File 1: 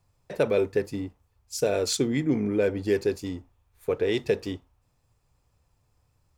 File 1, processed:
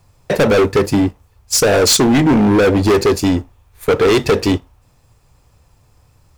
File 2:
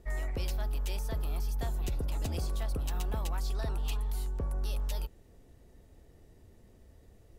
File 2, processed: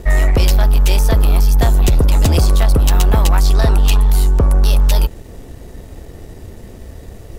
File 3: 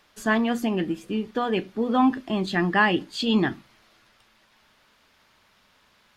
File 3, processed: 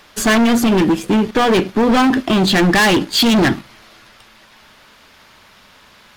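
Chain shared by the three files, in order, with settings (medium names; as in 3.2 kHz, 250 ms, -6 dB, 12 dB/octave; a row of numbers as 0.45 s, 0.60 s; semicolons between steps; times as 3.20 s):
waveshaping leveller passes 1; in parallel at -2 dB: compression, threshold -27 dBFS; on the sum: overload inside the chain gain 22 dB; normalise loudness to -14 LUFS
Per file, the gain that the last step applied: +13.0 dB, +15.5 dB, +11.5 dB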